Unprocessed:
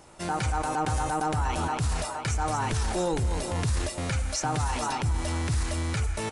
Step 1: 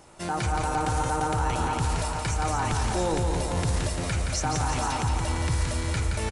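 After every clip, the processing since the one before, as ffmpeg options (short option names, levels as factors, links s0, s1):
-af "aecho=1:1:172|344|516|688|860|1032|1204:0.562|0.315|0.176|0.0988|0.0553|0.031|0.0173"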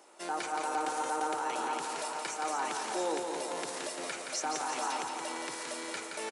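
-af "highpass=f=310:w=0.5412,highpass=f=310:w=1.3066,volume=0.562"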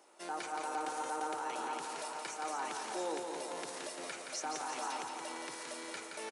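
-af "bandreject=f=7500:w=27,volume=0.562"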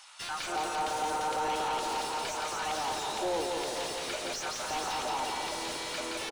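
-filter_complex "[0:a]highshelf=f=2600:t=q:w=1.5:g=7,acrossover=split=1100[s0][s1];[s0]adelay=270[s2];[s2][s1]amix=inputs=2:normalize=0,asplit=2[s3][s4];[s4]highpass=f=720:p=1,volume=20,asoftclip=type=tanh:threshold=0.0944[s5];[s3][s5]amix=inputs=2:normalize=0,lowpass=f=1400:p=1,volume=0.501"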